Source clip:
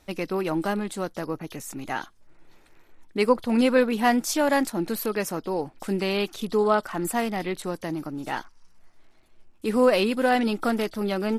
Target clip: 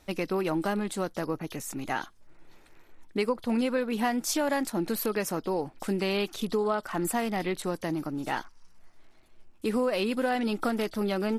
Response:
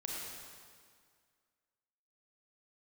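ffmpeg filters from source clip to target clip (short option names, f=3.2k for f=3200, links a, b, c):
-af "acompressor=threshold=-24dB:ratio=6"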